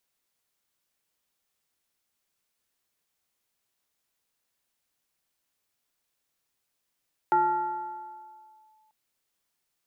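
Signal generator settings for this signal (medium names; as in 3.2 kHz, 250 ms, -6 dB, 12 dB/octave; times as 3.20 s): FM tone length 1.59 s, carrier 868 Hz, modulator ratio 0.59, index 0.6, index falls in 1.50 s linear, decay 2.05 s, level -17.5 dB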